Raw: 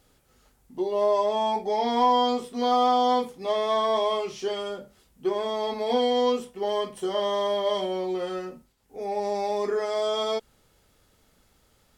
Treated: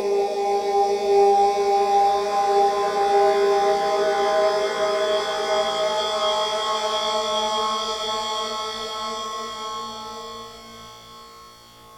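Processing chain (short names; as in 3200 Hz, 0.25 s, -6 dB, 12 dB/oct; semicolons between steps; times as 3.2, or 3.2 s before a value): flutter echo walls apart 3 m, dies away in 1.2 s; Paulstretch 6.6×, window 1.00 s, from 9.13; harmonic-percussive split percussive +9 dB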